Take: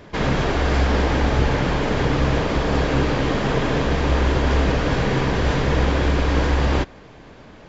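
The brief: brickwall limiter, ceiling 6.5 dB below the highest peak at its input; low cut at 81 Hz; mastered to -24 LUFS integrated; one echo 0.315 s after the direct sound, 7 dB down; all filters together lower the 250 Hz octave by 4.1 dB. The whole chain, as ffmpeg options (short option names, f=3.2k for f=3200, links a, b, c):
-af "highpass=81,equalizer=f=250:t=o:g=-5.5,alimiter=limit=-15dB:level=0:latency=1,aecho=1:1:315:0.447"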